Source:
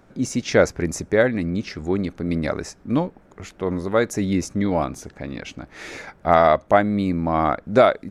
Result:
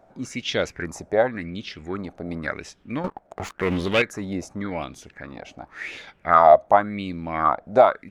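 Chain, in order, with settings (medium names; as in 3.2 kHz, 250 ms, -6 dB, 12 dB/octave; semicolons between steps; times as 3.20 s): 3.04–4.02 s: waveshaping leveller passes 3; sweeping bell 0.91 Hz 660–3400 Hz +18 dB; trim -9 dB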